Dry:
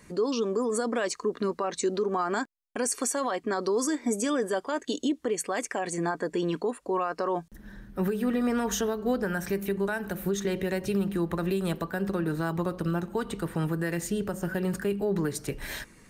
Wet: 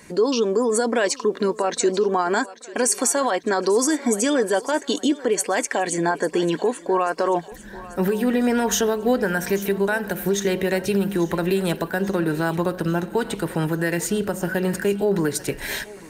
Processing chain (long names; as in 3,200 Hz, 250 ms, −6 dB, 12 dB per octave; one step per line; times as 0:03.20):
low-shelf EQ 170 Hz −9 dB
notch filter 1,200 Hz, Q 6.9
feedback echo with a high-pass in the loop 841 ms, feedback 57%, level −17 dB
level +9 dB